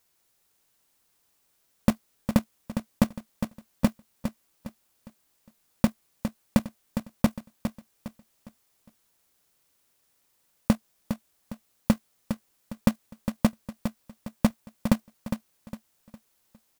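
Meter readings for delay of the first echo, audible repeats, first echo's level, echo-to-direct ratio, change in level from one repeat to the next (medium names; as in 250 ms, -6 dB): 408 ms, 3, -8.5 dB, -8.0 dB, -9.0 dB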